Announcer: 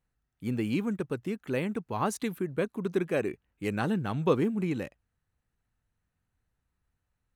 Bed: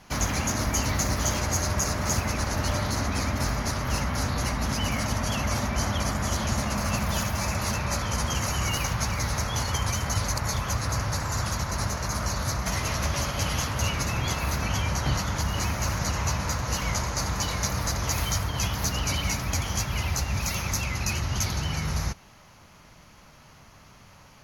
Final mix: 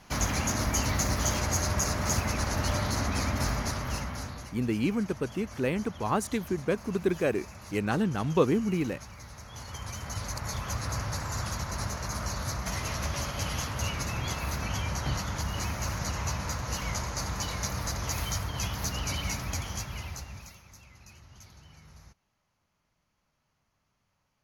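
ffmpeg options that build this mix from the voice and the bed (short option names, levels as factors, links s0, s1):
-filter_complex "[0:a]adelay=4100,volume=1.19[s0];[1:a]volume=3.76,afade=t=out:st=3.52:d=0.99:silence=0.149624,afade=t=in:st=9.42:d=1.39:silence=0.211349,afade=t=out:st=19.43:d=1.16:silence=0.1[s1];[s0][s1]amix=inputs=2:normalize=0"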